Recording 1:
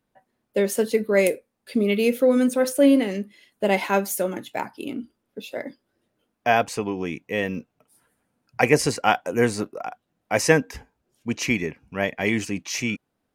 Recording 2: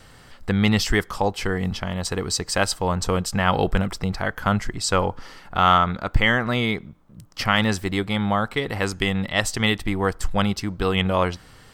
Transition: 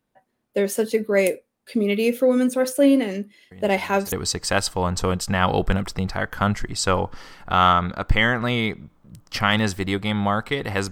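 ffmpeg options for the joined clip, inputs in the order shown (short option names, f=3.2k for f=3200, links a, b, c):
-filter_complex "[1:a]asplit=2[a][b];[0:a]apad=whole_dur=10.91,atrim=end=10.91,atrim=end=4.122[c];[b]atrim=start=2.168:end=8.96[d];[a]atrim=start=1.56:end=2.17,asetpts=PTS-STARTPTS,volume=-17.5dB,afade=t=in:d=0.004:c=hsin,afade=t=out:st=0.606:d=0.004:c=hsin,adelay=3510[e];[c][d]acrossfade=d=0.004:c1=hsin:c2=hsin[f];[f][e]amix=inputs=2:normalize=0"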